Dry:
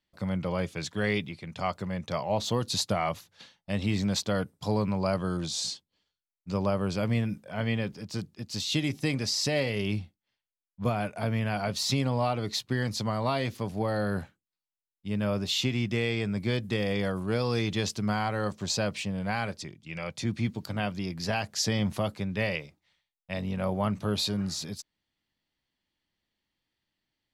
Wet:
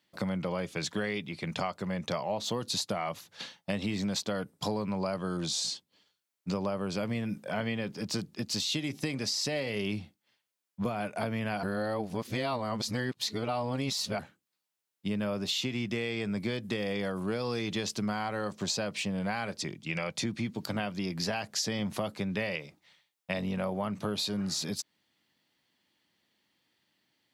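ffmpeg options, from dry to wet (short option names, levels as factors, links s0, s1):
-filter_complex "[0:a]asplit=3[s0][s1][s2];[s0]atrim=end=11.632[s3];[s1]atrim=start=11.628:end=14.192,asetpts=PTS-STARTPTS,areverse[s4];[s2]atrim=start=14.188[s5];[s3][s4]acrossfade=d=0.004:c1=hsin:c2=hsin[s6];[s6][s5]acrossfade=d=0.004:c1=hsin:c2=hsin,highpass=150,acompressor=threshold=0.0112:ratio=6,volume=2.82"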